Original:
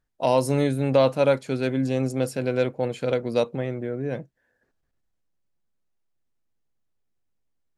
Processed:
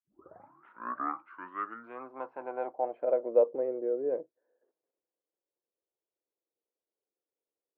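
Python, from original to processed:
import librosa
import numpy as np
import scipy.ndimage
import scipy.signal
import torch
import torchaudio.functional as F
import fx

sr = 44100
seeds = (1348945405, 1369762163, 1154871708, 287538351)

y = fx.tape_start_head(x, sr, length_s=2.05)
y = fx.rider(y, sr, range_db=3, speed_s=2.0)
y = fx.cabinet(y, sr, low_hz=310.0, low_slope=12, high_hz=2200.0, hz=(330.0, 480.0, 1000.0, 1900.0), db=(6, -5, 4, -3))
y = fx.filter_sweep_bandpass(y, sr, from_hz=1300.0, to_hz=480.0, start_s=1.76, end_s=3.5, q=5.8)
y = F.gain(torch.from_numpy(y), 5.0).numpy()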